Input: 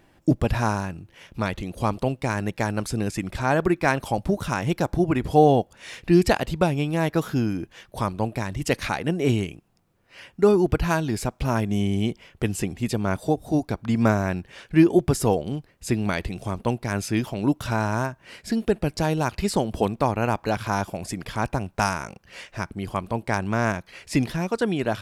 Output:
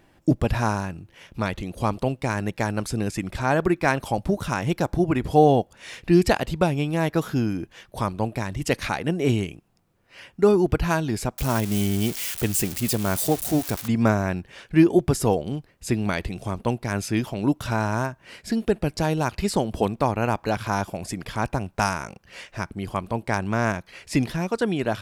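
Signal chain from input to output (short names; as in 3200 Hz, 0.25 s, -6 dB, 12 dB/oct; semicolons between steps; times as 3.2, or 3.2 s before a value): 11.38–13.88 switching spikes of -19.5 dBFS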